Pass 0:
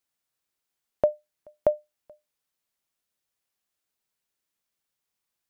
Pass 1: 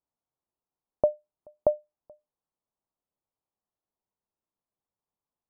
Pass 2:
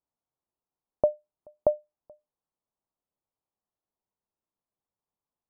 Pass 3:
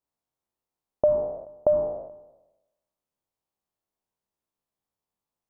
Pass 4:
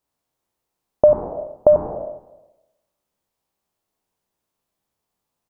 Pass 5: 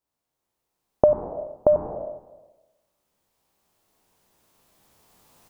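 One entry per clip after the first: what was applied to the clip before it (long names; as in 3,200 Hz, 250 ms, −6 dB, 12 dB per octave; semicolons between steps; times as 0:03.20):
Chebyshev low-pass filter 1,000 Hz, order 3
no processing that can be heard
peak hold with a decay on every bin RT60 0.96 s
single-tap delay 94 ms −7.5 dB; level +8.5 dB
camcorder AGC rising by 7.7 dB per second; level −5.5 dB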